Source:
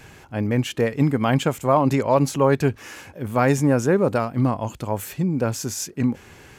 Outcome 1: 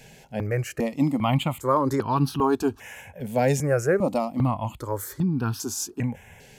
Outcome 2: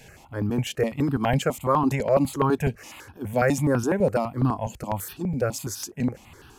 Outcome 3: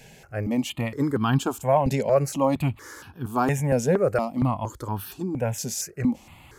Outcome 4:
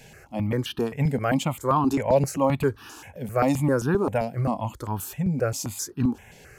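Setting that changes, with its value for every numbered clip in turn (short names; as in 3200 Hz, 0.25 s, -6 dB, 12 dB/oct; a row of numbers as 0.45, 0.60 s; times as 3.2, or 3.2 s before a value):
step phaser, rate: 2.5, 12, 4.3, 7.6 Hz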